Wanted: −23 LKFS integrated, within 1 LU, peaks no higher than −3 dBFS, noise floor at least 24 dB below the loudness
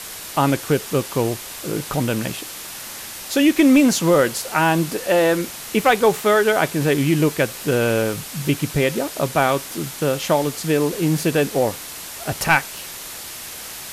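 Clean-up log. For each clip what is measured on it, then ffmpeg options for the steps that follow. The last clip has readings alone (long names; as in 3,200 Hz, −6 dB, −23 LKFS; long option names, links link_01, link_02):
background noise floor −34 dBFS; target noise floor −44 dBFS; integrated loudness −19.5 LKFS; sample peak −3.5 dBFS; target loudness −23.0 LKFS
→ -af "afftdn=noise_reduction=10:noise_floor=-34"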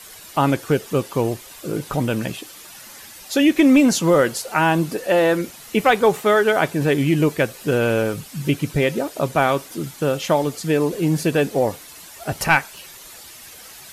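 background noise floor −41 dBFS; target noise floor −44 dBFS
→ -af "afftdn=noise_reduction=6:noise_floor=-41"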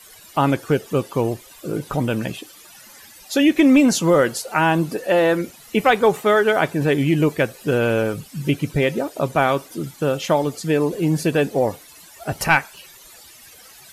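background noise floor −46 dBFS; integrated loudness −19.5 LKFS; sample peak −4.0 dBFS; target loudness −23.0 LKFS
→ -af "volume=-3.5dB"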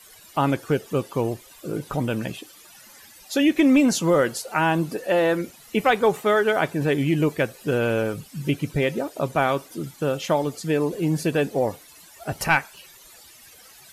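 integrated loudness −23.0 LKFS; sample peak −7.5 dBFS; background noise floor −49 dBFS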